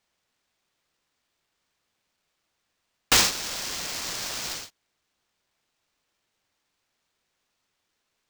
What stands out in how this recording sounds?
aliases and images of a low sample rate 12000 Hz, jitter 20%

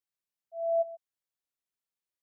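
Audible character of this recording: noise floor -93 dBFS; spectral tilt -11.5 dB/oct

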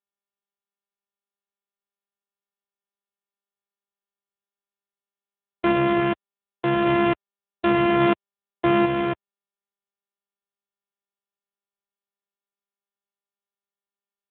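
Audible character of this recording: a buzz of ramps at a fixed pitch in blocks of 128 samples; random-step tremolo; a quantiser's noise floor 6-bit, dither none; AMR-NB

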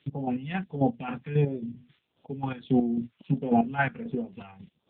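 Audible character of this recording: a quantiser's noise floor 10-bit, dither triangular; chopped level 3.7 Hz, depth 65%, duty 35%; phasing stages 2, 1.5 Hz, lowest notch 390–1900 Hz; AMR-NB

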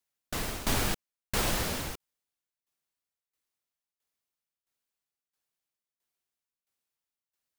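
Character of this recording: tremolo saw down 1.5 Hz, depth 85%

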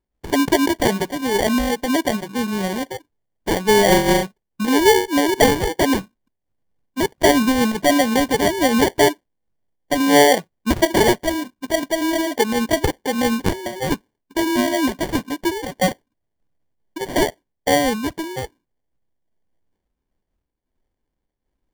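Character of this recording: aliases and images of a low sample rate 1300 Hz, jitter 0%; noise-modulated level

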